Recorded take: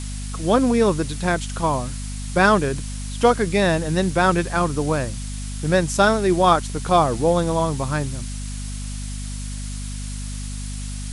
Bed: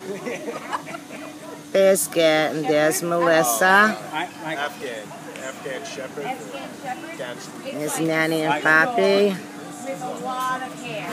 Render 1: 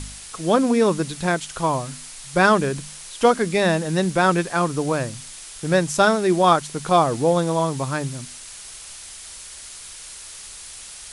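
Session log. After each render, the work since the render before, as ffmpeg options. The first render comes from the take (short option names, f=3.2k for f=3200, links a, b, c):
-af "bandreject=f=50:t=h:w=4,bandreject=f=100:t=h:w=4,bandreject=f=150:t=h:w=4,bandreject=f=200:t=h:w=4,bandreject=f=250:t=h:w=4"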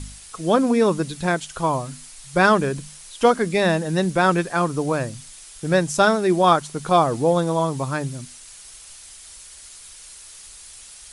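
-af "afftdn=nr=6:nf=-39"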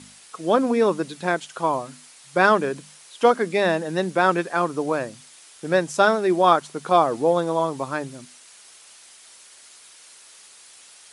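-af "highpass=260,highshelf=f=5k:g=-8.5"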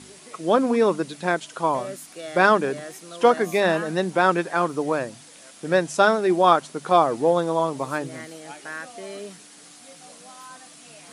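-filter_complex "[1:a]volume=-19dB[a];[0:a][a]amix=inputs=2:normalize=0"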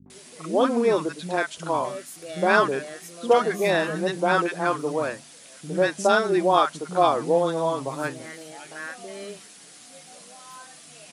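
-filter_complex "[0:a]acrossover=split=250|1000[a][b][c];[b]adelay=60[d];[c]adelay=100[e];[a][d][e]amix=inputs=3:normalize=0"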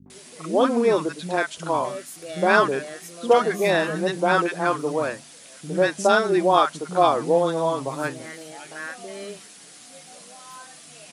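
-af "volume=1.5dB"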